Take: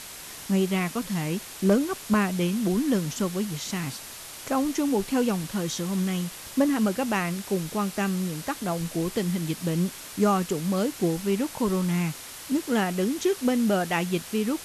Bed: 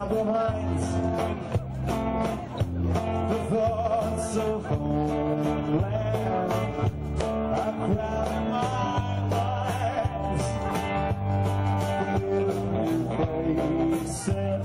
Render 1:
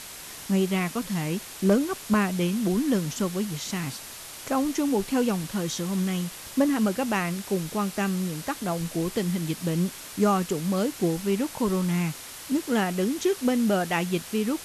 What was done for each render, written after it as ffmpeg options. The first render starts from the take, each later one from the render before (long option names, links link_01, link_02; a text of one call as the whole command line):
ffmpeg -i in.wav -af anull out.wav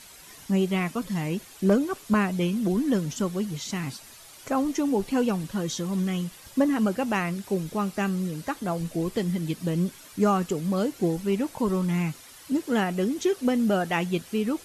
ffmpeg -i in.wav -af "afftdn=noise_reduction=10:noise_floor=-41" out.wav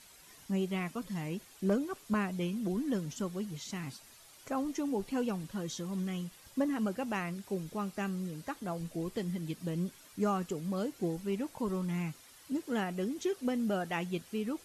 ffmpeg -i in.wav -af "volume=-9dB" out.wav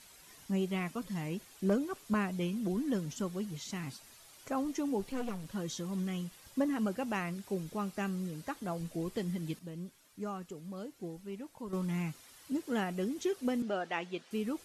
ffmpeg -i in.wav -filter_complex "[0:a]asettb=1/sr,asplit=3[link_01][link_02][link_03];[link_01]atrim=end=5.064[link_04];[link_02]atrim=start=5.06:end=5.49,asetpts=PTS-STARTPTS,afade=type=in:duration=0.004:curve=qsin,afade=type=out:start_time=0.426:duration=0.004:curve=qsin,aeval=exprs='clip(val(0),-1,0.00562)':channel_layout=same[link_05];[link_03]atrim=start=5.486[link_06];[link_04][link_05]acrossfade=duration=0.004:curve1=hsin:curve2=qsin[link_07];[link_07][link_06]acrossfade=duration=0.004:curve1=qsin:curve2=hsin,asettb=1/sr,asplit=3[link_08][link_09][link_10];[link_08]atrim=end=13.624[link_11];[link_09]atrim=start=13.62:end=14.31,asetpts=PTS-STARTPTS,afade=type=in:duration=0.004:curve=qsin,afade=type=out:start_time=0.686:duration=0.004:curve=qsin,highpass=320,lowpass=5100[link_12];[link_10]atrim=start=14.306[link_13];[link_11][link_12]acrossfade=duration=0.004:curve1=hsin:curve2=qsin[link_14];[link_14][link_13]acrossfade=duration=0.004:curve1=qsin:curve2=hsin,asplit=3[link_15][link_16][link_17];[link_15]atrim=end=9.592[link_18];[link_16]atrim=start=9.588:end=11.732,asetpts=PTS-STARTPTS,volume=-8.5dB[link_19];[link_17]atrim=start=11.728[link_20];[link_18][link_19]acrossfade=duration=0.004:curve1=hsin:curve2=hsin[link_21];[link_21][link_20]acrossfade=duration=0.004:curve1=hsin:curve2=hsin" out.wav